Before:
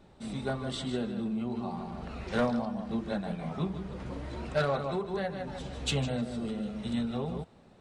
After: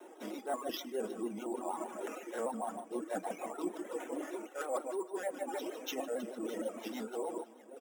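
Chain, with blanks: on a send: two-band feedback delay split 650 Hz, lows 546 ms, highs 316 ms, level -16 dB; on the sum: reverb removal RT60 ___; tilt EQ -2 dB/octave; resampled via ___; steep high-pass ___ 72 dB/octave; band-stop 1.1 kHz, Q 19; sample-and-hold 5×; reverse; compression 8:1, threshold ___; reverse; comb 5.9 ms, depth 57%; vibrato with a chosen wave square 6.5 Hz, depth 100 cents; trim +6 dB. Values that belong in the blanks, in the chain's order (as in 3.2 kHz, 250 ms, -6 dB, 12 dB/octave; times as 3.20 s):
1.5 s, 8 kHz, 260 Hz, -41 dBFS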